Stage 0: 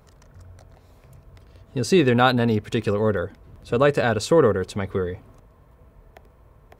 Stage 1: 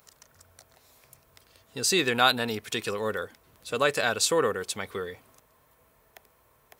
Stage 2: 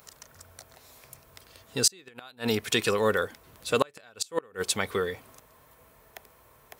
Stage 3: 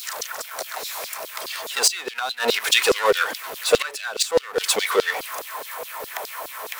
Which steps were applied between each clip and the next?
spectral tilt +4 dB per octave; level −4 dB
gate with flip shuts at −14 dBFS, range −33 dB; level +5.5 dB
power curve on the samples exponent 0.5; auto-filter high-pass saw down 4.8 Hz 410–4,700 Hz; level −1 dB

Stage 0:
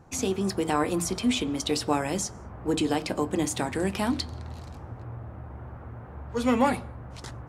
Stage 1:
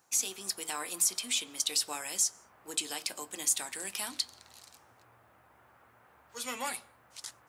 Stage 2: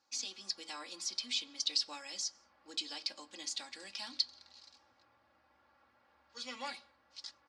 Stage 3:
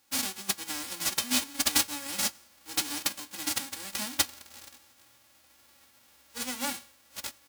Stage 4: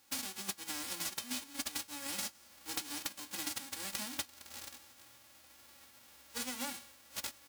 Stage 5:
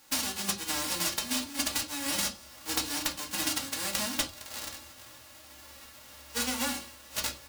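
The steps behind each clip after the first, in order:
first difference; level +5 dB
transistor ladder low-pass 5,300 Hz, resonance 60%; comb filter 3.6 ms, depth 81%
spectral envelope flattened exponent 0.1; sine wavefolder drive 6 dB, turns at −15 dBFS
downward compressor 16 to 1, threshold −37 dBFS, peak gain reduction 18 dB; level +1 dB
convolution reverb RT60 0.30 s, pre-delay 5 ms, DRR 1 dB; level +7.5 dB

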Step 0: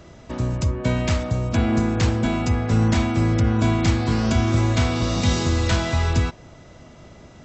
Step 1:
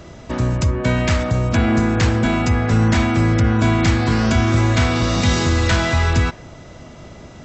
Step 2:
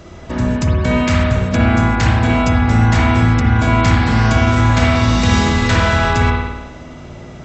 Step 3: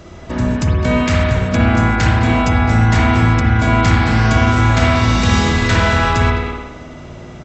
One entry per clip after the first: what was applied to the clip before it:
dynamic equaliser 1,700 Hz, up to +5 dB, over −44 dBFS, Q 1.4; in parallel at +0.5 dB: brickwall limiter −19 dBFS, peak gain reduction 11.5 dB
spring reverb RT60 1.1 s, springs 53 ms, chirp 50 ms, DRR −2 dB
far-end echo of a speakerphone 210 ms, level −8 dB

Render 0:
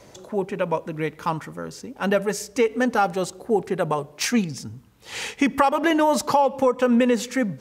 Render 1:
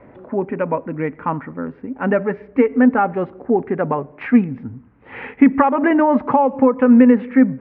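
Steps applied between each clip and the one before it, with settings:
Butterworth low-pass 2,200 Hz 36 dB per octave
parametric band 260 Hz +10.5 dB 0.29 octaves
level +3 dB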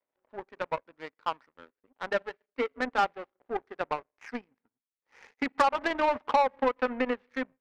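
high-pass filter 540 Hz 12 dB per octave
power curve on the samples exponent 2
soft clipping −16 dBFS, distortion −11 dB
level +3.5 dB

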